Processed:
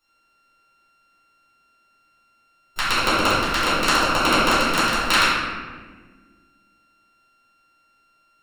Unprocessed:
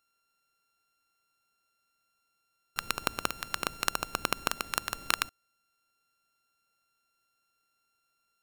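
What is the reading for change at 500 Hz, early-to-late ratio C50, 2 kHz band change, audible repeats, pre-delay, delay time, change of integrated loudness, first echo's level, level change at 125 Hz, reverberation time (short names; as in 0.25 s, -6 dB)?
+17.0 dB, -2.5 dB, +15.0 dB, none, 3 ms, none, +14.0 dB, none, +16.0 dB, 1.5 s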